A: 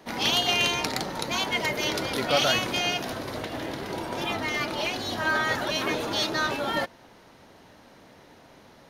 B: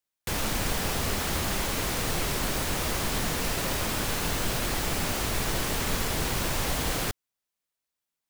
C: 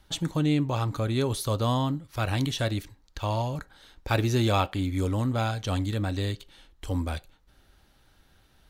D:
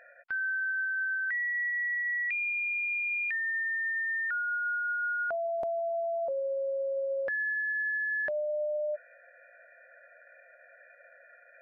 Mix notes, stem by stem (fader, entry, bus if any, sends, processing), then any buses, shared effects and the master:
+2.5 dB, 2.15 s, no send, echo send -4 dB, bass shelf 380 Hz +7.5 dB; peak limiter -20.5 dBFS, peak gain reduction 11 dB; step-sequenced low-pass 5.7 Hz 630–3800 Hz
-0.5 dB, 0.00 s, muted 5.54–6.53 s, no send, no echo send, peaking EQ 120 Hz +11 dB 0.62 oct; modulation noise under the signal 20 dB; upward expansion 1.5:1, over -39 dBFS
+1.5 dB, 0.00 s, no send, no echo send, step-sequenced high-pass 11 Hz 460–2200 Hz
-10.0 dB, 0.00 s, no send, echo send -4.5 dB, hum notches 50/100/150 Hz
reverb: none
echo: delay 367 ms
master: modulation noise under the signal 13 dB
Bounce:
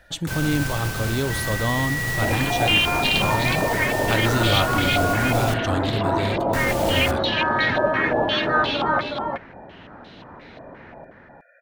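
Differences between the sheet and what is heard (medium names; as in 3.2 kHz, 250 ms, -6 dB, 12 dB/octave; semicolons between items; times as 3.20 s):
stem C: missing step-sequenced high-pass 11 Hz 460–2200 Hz; stem D -10.0 dB -> -1.0 dB; master: missing modulation noise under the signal 13 dB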